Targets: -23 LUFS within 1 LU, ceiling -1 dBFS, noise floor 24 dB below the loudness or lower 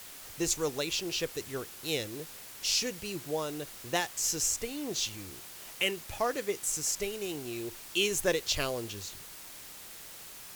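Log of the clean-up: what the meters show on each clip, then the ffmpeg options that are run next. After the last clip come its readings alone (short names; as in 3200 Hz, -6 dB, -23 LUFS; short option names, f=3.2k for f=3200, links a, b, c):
noise floor -47 dBFS; noise floor target -56 dBFS; loudness -32.0 LUFS; peak -13.5 dBFS; loudness target -23.0 LUFS
-> -af "afftdn=nr=9:nf=-47"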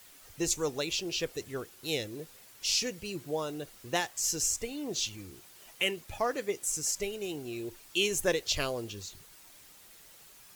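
noise floor -55 dBFS; noise floor target -57 dBFS
-> -af "afftdn=nr=6:nf=-55"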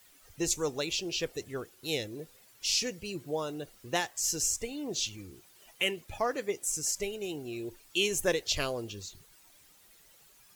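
noise floor -60 dBFS; loudness -32.5 LUFS; peak -13.5 dBFS; loudness target -23.0 LUFS
-> -af "volume=9.5dB"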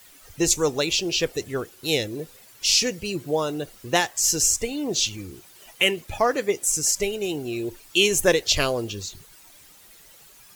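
loudness -23.0 LUFS; peak -4.0 dBFS; noise floor -51 dBFS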